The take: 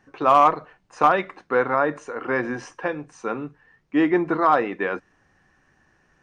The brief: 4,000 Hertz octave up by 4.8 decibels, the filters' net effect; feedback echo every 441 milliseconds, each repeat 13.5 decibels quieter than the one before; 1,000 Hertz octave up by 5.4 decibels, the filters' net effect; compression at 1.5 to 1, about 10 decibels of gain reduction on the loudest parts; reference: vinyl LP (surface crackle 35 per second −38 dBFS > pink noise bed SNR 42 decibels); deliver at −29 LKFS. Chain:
parametric band 1,000 Hz +6.5 dB
parametric band 4,000 Hz +6 dB
downward compressor 1.5 to 1, threshold −35 dBFS
repeating echo 441 ms, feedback 21%, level −13.5 dB
surface crackle 35 per second −38 dBFS
pink noise bed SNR 42 dB
level −2 dB

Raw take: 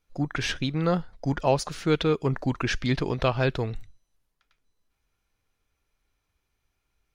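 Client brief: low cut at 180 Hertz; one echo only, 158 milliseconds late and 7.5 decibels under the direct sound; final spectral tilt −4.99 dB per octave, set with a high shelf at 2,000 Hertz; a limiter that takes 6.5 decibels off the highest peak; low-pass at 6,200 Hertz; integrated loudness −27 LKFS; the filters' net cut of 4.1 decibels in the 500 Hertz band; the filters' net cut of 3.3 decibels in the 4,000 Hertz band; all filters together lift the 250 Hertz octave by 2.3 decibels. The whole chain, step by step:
high-pass filter 180 Hz
low-pass filter 6,200 Hz
parametric band 250 Hz +6.5 dB
parametric band 500 Hz −7 dB
high-shelf EQ 2,000 Hz +4 dB
parametric band 4,000 Hz −7.5 dB
brickwall limiter −16.5 dBFS
single-tap delay 158 ms −7.5 dB
level +1.5 dB

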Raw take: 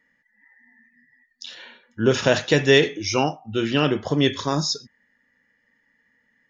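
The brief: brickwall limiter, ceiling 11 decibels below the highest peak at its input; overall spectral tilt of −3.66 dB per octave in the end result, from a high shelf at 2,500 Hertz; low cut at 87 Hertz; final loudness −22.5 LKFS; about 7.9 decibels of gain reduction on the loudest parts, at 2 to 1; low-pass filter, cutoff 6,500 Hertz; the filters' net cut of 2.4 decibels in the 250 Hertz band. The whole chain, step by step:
high-pass filter 87 Hz
low-pass filter 6,500 Hz
parametric band 250 Hz −3 dB
high-shelf EQ 2,500 Hz +5 dB
downward compressor 2 to 1, threshold −25 dBFS
level +8 dB
brickwall limiter −11 dBFS

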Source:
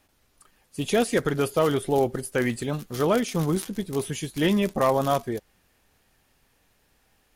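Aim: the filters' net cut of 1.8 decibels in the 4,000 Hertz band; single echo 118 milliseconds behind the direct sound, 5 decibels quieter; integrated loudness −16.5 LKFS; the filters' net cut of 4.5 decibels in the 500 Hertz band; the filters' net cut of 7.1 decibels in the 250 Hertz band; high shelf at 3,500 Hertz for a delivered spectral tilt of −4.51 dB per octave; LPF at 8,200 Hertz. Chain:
low-pass filter 8,200 Hz
parametric band 250 Hz −9 dB
parametric band 500 Hz −3 dB
high-shelf EQ 3,500 Hz +6.5 dB
parametric band 4,000 Hz −6.5 dB
single-tap delay 118 ms −5 dB
level +11 dB

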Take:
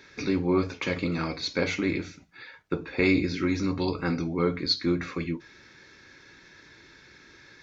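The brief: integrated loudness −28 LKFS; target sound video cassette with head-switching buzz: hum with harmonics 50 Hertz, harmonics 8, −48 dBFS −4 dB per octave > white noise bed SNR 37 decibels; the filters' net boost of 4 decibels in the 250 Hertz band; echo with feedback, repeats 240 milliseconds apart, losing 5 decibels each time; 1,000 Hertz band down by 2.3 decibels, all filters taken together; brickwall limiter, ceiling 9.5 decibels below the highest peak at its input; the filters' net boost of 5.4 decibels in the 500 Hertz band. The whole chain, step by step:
parametric band 250 Hz +3 dB
parametric band 500 Hz +7 dB
parametric band 1,000 Hz −5 dB
brickwall limiter −17.5 dBFS
repeating echo 240 ms, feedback 56%, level −5 dB
hum with harmonics 50 Hz, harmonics 8, −48 dBFS −4 dB per octave
white noise bed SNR 37 dB
level −1 dB

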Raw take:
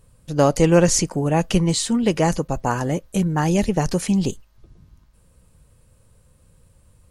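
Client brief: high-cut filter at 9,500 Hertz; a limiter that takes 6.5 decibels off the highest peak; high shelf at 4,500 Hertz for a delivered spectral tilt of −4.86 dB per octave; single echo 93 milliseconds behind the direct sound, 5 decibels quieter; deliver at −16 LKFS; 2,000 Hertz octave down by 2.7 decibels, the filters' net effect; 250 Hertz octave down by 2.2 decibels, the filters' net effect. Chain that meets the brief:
low-pass filter 9,500 Hz
parametric band 250 Hz −3.5 dB
parametric band 2,000 Hz −4.5 dB
high-shelf EQ 4,500 Hz +4.5 dB
brickwall limiter −10.5 dBFS
single-tap delay 93 ms −5 dB
level +5.5 dB

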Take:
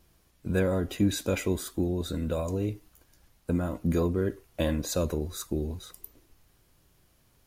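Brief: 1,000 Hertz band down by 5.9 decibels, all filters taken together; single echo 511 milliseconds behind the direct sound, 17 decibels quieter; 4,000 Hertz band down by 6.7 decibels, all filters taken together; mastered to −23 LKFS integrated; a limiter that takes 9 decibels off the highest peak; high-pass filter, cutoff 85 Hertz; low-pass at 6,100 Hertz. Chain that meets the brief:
high-pass filter 85 Hz
low-pass filter 6,100 Hz
parametric band 1,000 Hz −8 dB
parametric band 4,000 Hz −6.5 dB
brickwall limiter −23.5 dBFS
single-tap delay 511 ms −17 dB
level +12.5 dB

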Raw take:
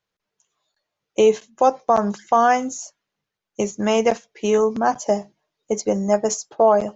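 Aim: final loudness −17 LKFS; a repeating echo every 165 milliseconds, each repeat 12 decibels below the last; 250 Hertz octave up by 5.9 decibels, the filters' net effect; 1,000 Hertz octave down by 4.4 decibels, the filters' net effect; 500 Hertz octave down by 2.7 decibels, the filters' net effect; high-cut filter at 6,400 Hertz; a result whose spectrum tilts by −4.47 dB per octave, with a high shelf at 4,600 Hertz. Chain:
low-pass filter 6,400 Hz
parametric band 250 Hz +8 dB
parametric band 500 Hz −4 dB
parametric band 1,000 Hz −5 dB
high-shelf EQ 4,600 Hz −4 dB
repeating echo 165 ms, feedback 25%, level −12 dB
level +4 dB

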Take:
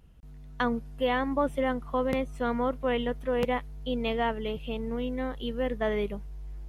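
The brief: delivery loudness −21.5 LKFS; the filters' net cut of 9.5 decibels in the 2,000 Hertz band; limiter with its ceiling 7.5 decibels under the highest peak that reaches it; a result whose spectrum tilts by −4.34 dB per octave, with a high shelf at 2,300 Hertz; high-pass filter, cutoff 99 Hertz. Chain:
high-pass filter 99 Hz
parametric band 2,000 Hz −8.5 dB
high-shelf EQ 2,300 Hz −7.5 dB
level +12.5 dB
brickwall limiter −11.5 dBFS

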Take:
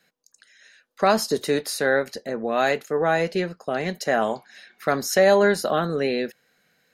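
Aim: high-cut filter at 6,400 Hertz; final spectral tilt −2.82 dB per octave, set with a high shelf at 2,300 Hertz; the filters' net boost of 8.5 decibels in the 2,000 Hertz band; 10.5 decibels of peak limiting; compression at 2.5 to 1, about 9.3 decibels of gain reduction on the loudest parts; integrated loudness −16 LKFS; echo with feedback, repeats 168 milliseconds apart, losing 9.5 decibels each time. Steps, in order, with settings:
low-pass filter 6,400 Hz
parametric band 2,000 Hz +7.5 dB
high-shelf EQ 2,300 Hz +7 dB
downward compressor 2.5 to 1, threshold −24 dBFS
brickwall limiter −19.5 dBFS
repeating echo 168 ms, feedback 33%, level −9.5 dB
level +13.5 dB

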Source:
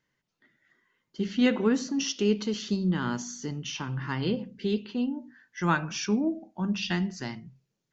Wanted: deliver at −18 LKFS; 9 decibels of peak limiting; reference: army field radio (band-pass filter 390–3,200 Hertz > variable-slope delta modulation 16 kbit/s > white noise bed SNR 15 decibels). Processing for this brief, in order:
brickwall limiter −20 dBFS
band-pass filter 390–3,200 Hz
variable-slope delta modulation 16 kbit/s
white noise bed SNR 15 dB
level +20 dB

